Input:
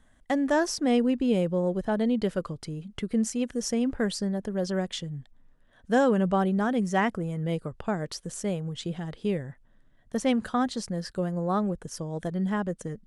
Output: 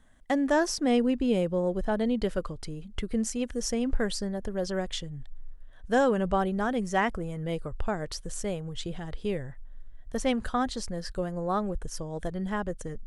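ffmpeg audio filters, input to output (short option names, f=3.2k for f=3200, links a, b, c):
-af "asubboost=boost=10:cutoff=54"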